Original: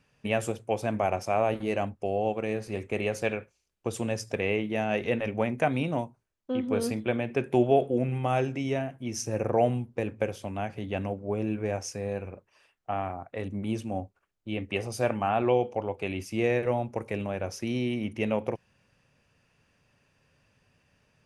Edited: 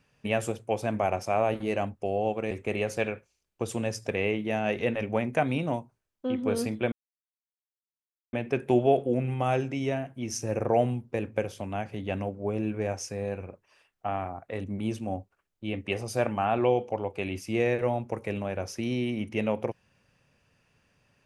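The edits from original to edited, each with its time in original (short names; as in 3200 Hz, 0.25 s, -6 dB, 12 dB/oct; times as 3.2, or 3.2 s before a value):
2.51–2.76 cut
7.17 insert silence 1.41 s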